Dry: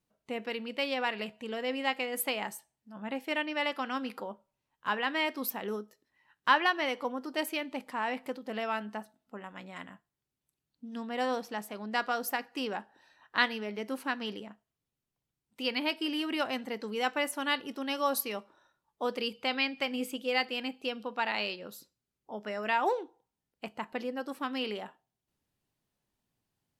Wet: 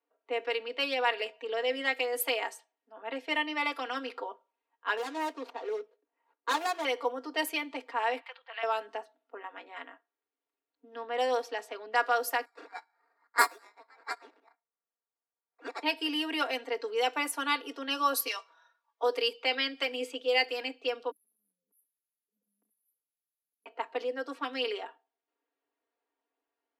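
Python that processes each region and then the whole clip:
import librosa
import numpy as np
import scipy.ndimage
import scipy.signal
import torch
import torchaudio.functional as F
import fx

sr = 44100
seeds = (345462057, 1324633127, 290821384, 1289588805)

y = fx.chain(x, sr, fx.median_filter(points=25),
    fx.highpass(hz=220.0, slope=6), at=(4.97, 6.85))
y = fx.chain(y, sr, fx.highpass(hz=920.0, slope=24),
    fx.high_shelf_res(hz=4800.0, db=-11.5, q=1.5), at=(8.2, 8.63))
y = fx.chain(y, sr, fx.steep_highpass(hz=710.0, slope=96),
    fx.sample_hold(seeds[0], rate_hz=3100.0, jitter_pct=0),
    fx.upward_expand(threshold_db=-43.0, expansion=1.5), at=(12.45, 15.83))
y = fx.chain(y, sr, fx.highpass(hz=780.0, slope=12),
    fx.peak_eq(hz=5800.0, db=10.5, octaves=1.1),
    fx.comb(ms=6.1, depth=0.55), at=(18.27, 19.03))
y = fx.chain(y, sr, fx.brickwall_bandstop(low_hz=170.0, high_hz=10000.0),
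    fx.high_shelf(hz=12000.0, db=11.5),
    fx.env_flatten(amount_pct=70), at=(21.11, 23.66))
y = scipy.signal.sosfilt(scipy.signal.butter(12, 290.0, 'highpass', fs=sr, output='sos'), y)
y = fx.env_lowpass(y, sr, base_hz=2000.0, full_db=-29.5)
y = y + 0.88 * np.pad(y, (int(4.3 * sr / 1000.0), 0))[:len(y)]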